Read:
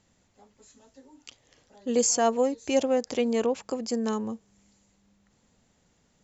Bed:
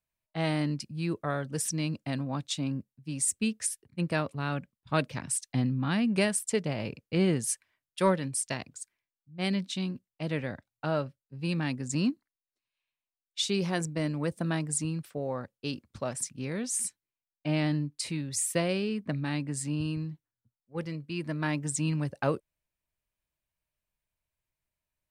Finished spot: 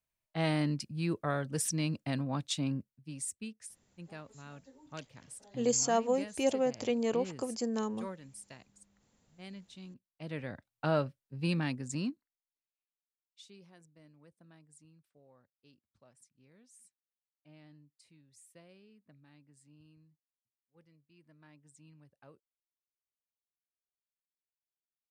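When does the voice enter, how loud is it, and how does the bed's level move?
3.70 s, -5.5 dB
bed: 2.73 s -1.5 dB
3.71 s -18 dB
9.74 s -18 dB
10.83 s 0 dB
11.45 s 0 dB
13.76 s -29.5 dB

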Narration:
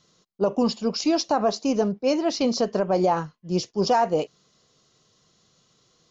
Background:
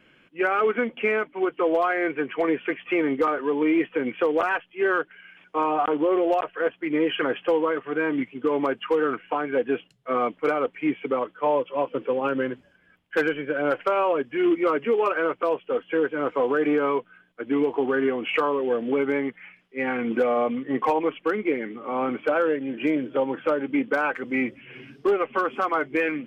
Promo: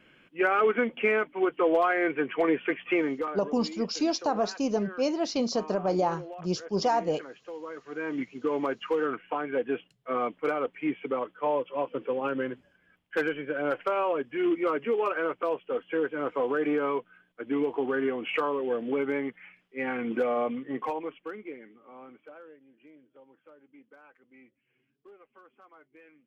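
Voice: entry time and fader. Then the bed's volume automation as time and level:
2.95 s, -5.0 dB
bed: 2.93 s -1.5 dB
3.64 s -19.5 dB
7.48 s -19.5 dB
8.24 s -5 dB
20.49 s -5 dB
22.83 s -31.5 dB

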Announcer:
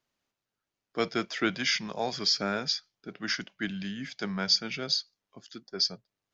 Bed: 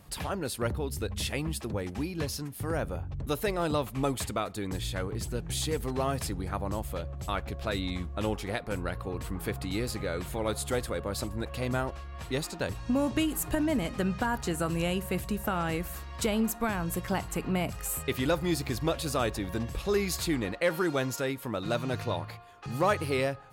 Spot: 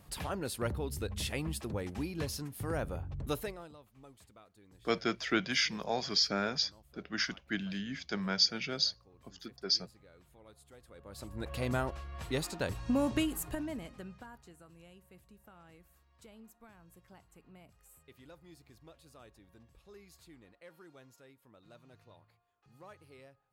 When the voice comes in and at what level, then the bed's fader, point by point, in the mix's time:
3.90 s, -2.5 dB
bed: 3.36 s -4 dB
3.76 s -27 dB
10.78 s -27 dB
11.51 s -2.5 dB
13.16 s -2.5 dB
14.64 s -27.5 dB

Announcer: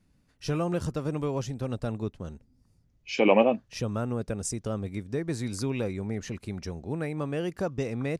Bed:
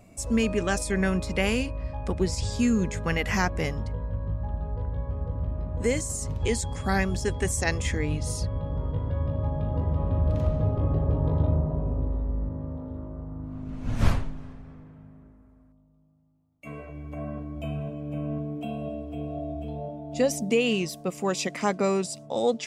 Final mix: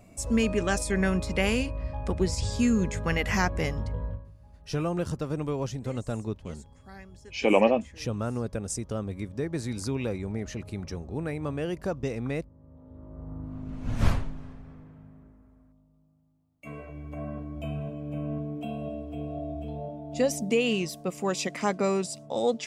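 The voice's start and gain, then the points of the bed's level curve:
4.25 s, -0.5 dB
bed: 4.09 s -0.5 dB
4.32 s -22 dB
12.55 s -22 dB
13.31 s -1.5 dB

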